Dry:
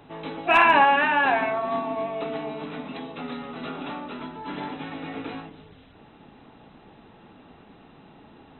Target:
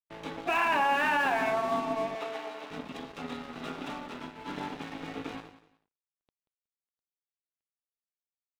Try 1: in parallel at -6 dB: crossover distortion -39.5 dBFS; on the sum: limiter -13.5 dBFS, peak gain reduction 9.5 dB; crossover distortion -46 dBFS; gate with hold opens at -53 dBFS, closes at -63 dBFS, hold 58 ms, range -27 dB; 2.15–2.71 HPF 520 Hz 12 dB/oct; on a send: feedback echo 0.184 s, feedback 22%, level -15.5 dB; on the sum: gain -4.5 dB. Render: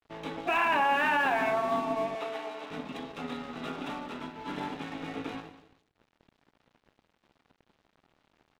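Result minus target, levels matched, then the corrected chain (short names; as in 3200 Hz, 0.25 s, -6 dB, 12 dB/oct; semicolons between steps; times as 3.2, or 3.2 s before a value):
second crossover distortion: distortion -5 dB
in parallel at -6 dB: crossover distortion -39.5 dBFS; on the sum: limiter -13.5 dBFS, peak gain reduction 9.5 dB; crossover distortion -40 dBFS; gate with hold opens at -53 dBFS, closes at -63 dBFS, hold 58 ms, range -27 dB; 2.15–2.71 HPF 520 Hz 12 dB/oct; on a send: feedback echo 0.184 s, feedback 22%, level -15.5 dB; on the sum: gain -4.5 dB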